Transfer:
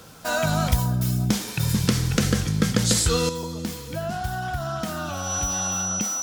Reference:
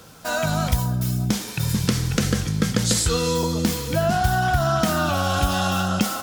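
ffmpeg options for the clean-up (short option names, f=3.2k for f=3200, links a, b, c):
-af "bandreject=f=5.9k:w=30,asetnsamples=n=441:p=0,asendcmd='3.29 volume volume 8.5dB',volume=0dB"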